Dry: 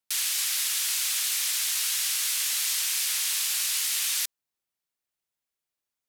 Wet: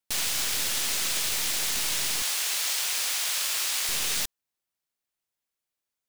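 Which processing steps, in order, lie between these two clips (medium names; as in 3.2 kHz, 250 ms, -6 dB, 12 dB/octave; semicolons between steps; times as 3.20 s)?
tracing distortion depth 0.052 ms; 2.22–3.89 s: high-pass 600 Hz 12 dB/octave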